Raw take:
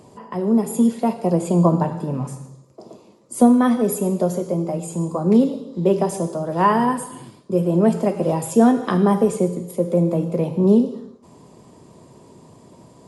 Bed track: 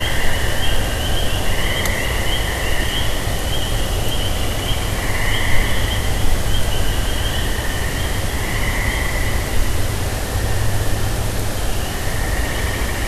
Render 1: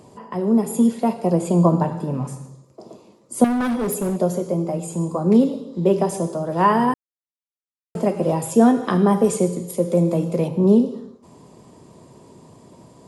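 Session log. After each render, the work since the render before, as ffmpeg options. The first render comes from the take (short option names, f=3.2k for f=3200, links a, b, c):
-filter_complex "[0:a]asettb=1/sr,asplit=3[a][b][c];[a]atrim=end=3.444[d];[b]atrim=start=3.44:end=4.17,asetpts=PTS-STARTPTS,afade=t=in:d=0.004:c=qsin,afade=t=out:st=0.726:d=0.004:c=qsin,volume=19dB,asoftclip=hard,volume=-19dB[e];[c]atrim=start=4.166[f];[d][e]acrossfade=d=0.004:c1=hsin:c2=qsin[g];[g][f]acrossfade=d=0.004:c1=qsin:c2=hsin,asettb=1/sr,asplit=3[h][i][j];[h]atrim=end=9.244[k];[i]atrim=start=9.24:end=10.48,asetpts=PTS-STARTPTS,afade=t=in:d=0.004:c=qsin,afade=t=out:st=1.236:d=0.004:c=qsin,equalizer=f=6.9k:w=0.4:g=7[l];[j]atrim=start=10.476[m];[k][l]acrossfade=d=0.004:c1=hsin:c2=qsin[n];[n][m]acrossfade=d=0.004:c1=qsin:c2=hsin,asplit=3[o][p][q];[o]atrim=end=6.94,asetpts=PTS-STARTPTS,afade=t=out:st=6.936:d=0.004:c=hsin[r];[p]atrim=start=6.94:end=7.95,asetpts=PTS-STARTPTS,volume=0[s];[q]atrim=start=7.95,asetpts=PTS-STARTPTS,afade=t=in:d=0.004:c=hsin[t];[r][s][t]concat=n=3:v=0:a=1"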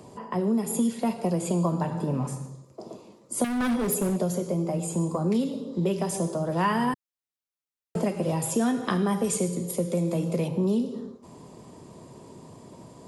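-filter_complex "[0:a]acrossover=split=210|1600[a][b][c];[a]alimiter=level_in=1dB:limit=-24dB:level=0:latency=1:release=183,volume=-1dB[d];[b]acompressor=threshold=-27dB:ratio=6[e];[d][e][c]amix=inputs=3:normalize=0"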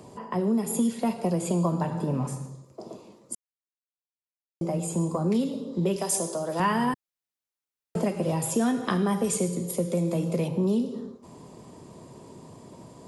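-filter_complex "[0:a]asettb=1/sr,asplit=3[a][b][c];[a]atrim=end=5.964[d];[b]atrim=start=5.96:end=6.6,asetpts=PTS-STARTPTS,afade=t=in:d=0.004:c=qsin,afade=t=out:st=0.636:d=0.004:c=qsin,bass=f=250:g=-11,treble=f=4k:g=8[e];[c]atrim=start=6.596[f];[d][e]acrossfade=d=0.004:c1=hsin:c2=qsin[g];[g][f]acrossfade=d=0.004:c1=qsin:c2=hsin,asplit=3[h][i][j];[h]atrim=end=3.35,asetpts=PTS-STARTPTS,afade=t=out:st=3.346:d=0.004:c=hsin[k];[i]atrim=start=3.35:end=4.61,asetpts=PTS-STARTPTS,volume=0[l];[j]atrim=start=4.61,asetpts=PTS-STARTPTS,afade=t=in:d=0.004:c=hsin[m];[k][l][m]concat=n=3:v=0:a=1"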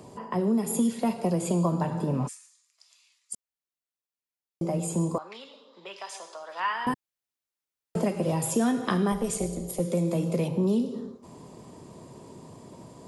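-filter_complex "[0:a]asplit=3[a][b][c];[a]afade=t=out:st=2.27:d=0.02[d];[b]asuperpass=centerf=4900:order=8:qfactor=0.54,afade=t=in:st=2.27:d=0.02,afade=t=out:st=3.33:d=0.02[e];[c]afade=t=in:st=3.33:d=0.02[f];[d][e][f]amix=inputs=3:normalize=0,asettb=1/sr,asplit=3[g][h][i];[g]atrim=end=5.184[j];[h]atrim=start=5.18:end=6.87,asetpts=PTS-STARTPTS,afade=t=in:d=0.004:c=qsin,afade=t=out:st=1.686:d=0.004:c=qsin,asuperpass=centerf=2000:order=4:qfactor=0.66[k];[i]atrim=start=6.866[l];[j][k]acrossfade=d=0.004:c1=hsin:c2=qsin[m];[m][l]acrossfade=d=0.004:c1=qsin:c2=hsin,asettb=1/sr,asplit=3[n][o][p];[n]atrim=end=9.124[q];[o]atrim=start=9.12:end=9.8,asetpts=PTS-STARTPTS,afade=t=in:d=0.004:c=qsin,afade=t=out:st=0.676:d=0.004:c=qsin,tremolo=f=230:d=0.71[r];[p]atrim=start=9.796[s];[q][r]acrossfade=d=0.004:c1=hsin:c2=qsin[t];[t][s]acrossfade=d=0.004:c1=qsin:c2=hsin"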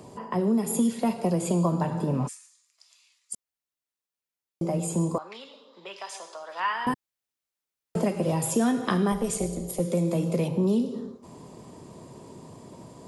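-af "volume=1dB"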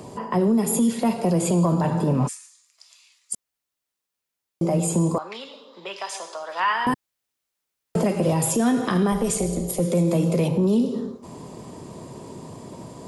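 -af "acontrast=70,alimiter=limit=-13dB:level=0:latency=1:release=27"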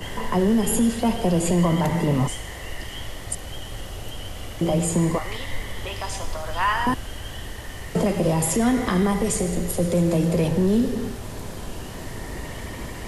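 -filter_complex "[1:a]volume=-14.5dB[a];[0:a][a]amix=inputs=2:normalize=0"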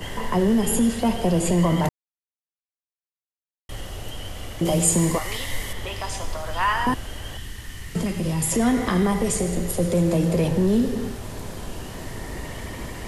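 -filter_complex "[0:a]asettb=1/sr,asplit=3[a][b][c];[a]atrim=end=4.654[d];[b]atrim=start=4.65:end=5.73,asetpts=PTS-STARTPTS,afade=t=in:d=0.004:c=qsin,afade=t=out:st=1.076:d=0.004:c=qsin,highshelf=f=4.1k:g=10.5[e];[c]atrim=start=5.726[f];[d][e]acrossfade=d=0.004:c1=hsin:c2=qsin[g];[g][f]acrossfade=d=0.004:c1=qsin:c2=hsin,asettb=1/sr,asplit=3[h][i][j];[h]atrim=end=7.374[k];[i]atrim=start=7.37:end=8.52,asetpts=PTS-STARTPTS,afade=t=in:d=0.004:c=qsin,afade=t=out:st=1.146:d=0.004:c=qsin,equalizer=f=620:w=0.87:g=-12.5[l];[j]atrim=start=8.516[m];[k][l]acrossfade=d=0.004:c1=hsin:c2=qsin[n];[n][m]acrossfade=d=0.004:c1=qsin:c2=hsin,asplit=3[o][p][q];[o]atrim=end=1.89,asetpts=PTS-STARTPTS,afade=t=out:st=1.886:d=0.004:c=hsin[r];[p]atrim=start=1.89:end=3.69,asetpts=PTS-STARTPTS,volume=0[s];[q]atrim=start=3.69,asetpts=PTS-STARTPTS,afade=t=in:d=0.004:c=hsin[t];[r][s][t]concat=n=3:v=0:a=1"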